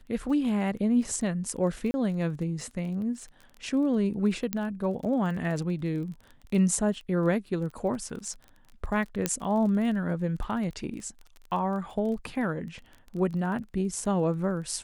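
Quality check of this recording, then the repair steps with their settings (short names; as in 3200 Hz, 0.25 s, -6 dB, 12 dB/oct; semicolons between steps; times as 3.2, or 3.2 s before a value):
crackle 21/s -37 dBFS
1.91–1.94 gap 30 ms
4.53 pop -12 dBFS
9.26 pop -9 dBFS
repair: de-click; interpolate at 1.91, 30 ms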